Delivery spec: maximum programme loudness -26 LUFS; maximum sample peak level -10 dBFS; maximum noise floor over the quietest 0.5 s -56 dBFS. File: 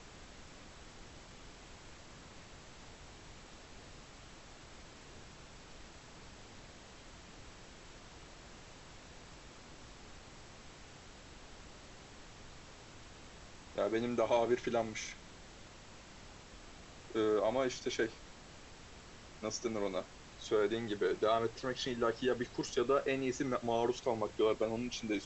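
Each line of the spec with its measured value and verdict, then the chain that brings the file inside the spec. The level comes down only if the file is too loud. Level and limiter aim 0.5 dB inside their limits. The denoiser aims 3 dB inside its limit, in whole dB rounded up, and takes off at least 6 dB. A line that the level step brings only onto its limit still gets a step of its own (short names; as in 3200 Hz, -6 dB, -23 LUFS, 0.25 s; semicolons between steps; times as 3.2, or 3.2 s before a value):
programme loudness -35.5 LUFS: OK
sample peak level -20.0 dBFS: OK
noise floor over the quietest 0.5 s -54 dBFS: fail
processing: denoiser 6 dB, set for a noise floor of -54 dBFS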